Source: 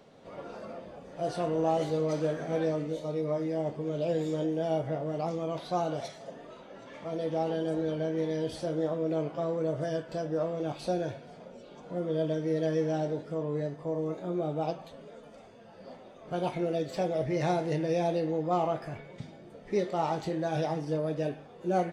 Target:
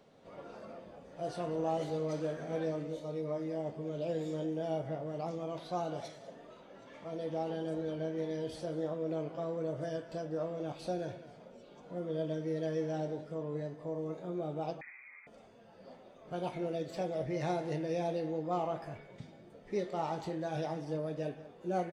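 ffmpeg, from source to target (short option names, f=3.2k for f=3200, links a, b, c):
-filter_complex "[0:a]asplit=2[a][b];[b]adelay=192.4,volume=-15dB,highshelf=f=4k:g=-4.33[c];[a][c]amix=inputs=2:normalize=0,asettb=1/sr,asplit=3[d][e][f];[d]atrim=end=14.814[g];[e]atrim=start=14.81:end=15.27,asetpts=PTS-STARTPTS,afade=t=in:d=0.004:c=qsin,afade=t=out:st=0.456:d=0.004:c=qsin,lowpass=f=2.2k:t=q:w=0.5098,lowpass=f=2.2k:t=q:w=0.6013,lowpass=f=2.2k:t=q:w=0.9,lowpass=f=2.2k:t=q:w=2.563,afreqshift=-2600[h];[f]atrim=start=15.266[i];[g][h]acrossfade=d=0.004:c1=hsin:c2=qsin[j];[j][i]acrossfade=d=0.004:c1=qsin:c2=hsin,volume=-6dB"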